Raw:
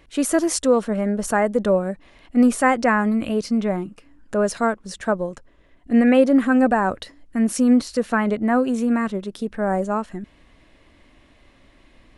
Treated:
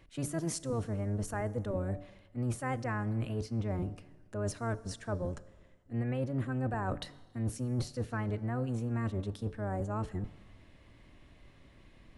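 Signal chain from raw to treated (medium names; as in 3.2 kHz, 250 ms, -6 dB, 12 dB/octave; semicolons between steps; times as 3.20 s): octave divider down 1 oct, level +4 dB; de-hum 145.8 Hz, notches 5; reverse; compression 6:1, threshold -24 dBFS, peak gain reduction 16.5 dB; reverse; Schroeder reverb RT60 1.5 s, combs from 27 ms, DRR 18.5 dB; trim -7.5 dB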